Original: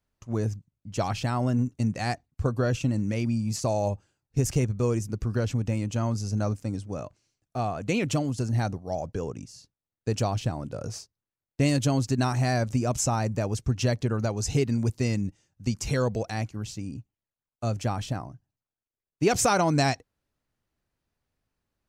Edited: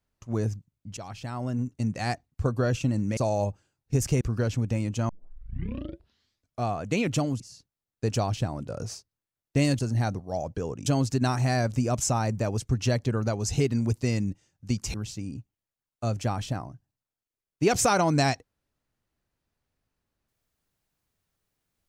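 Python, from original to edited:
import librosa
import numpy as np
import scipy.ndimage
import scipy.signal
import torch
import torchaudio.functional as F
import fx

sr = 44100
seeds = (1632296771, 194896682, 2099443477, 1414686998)

y = fx.edit(x, sr, fx.fade_in_from(start_s=0.97, length_s=1.16, floor_db=-14.5),
    fx.cut(start_s=3.17, length_s=0.44),
    fx.cut(start_s=4.65, length_s=0.53),
    fx.tape_start(start_s=6.06, length_s=1.56),
    fx.move(start_s=8.37, length_s=1.07, to_s=11.83),
    fx.cut(start_s=15.91, length_s=0.63), tone=tone)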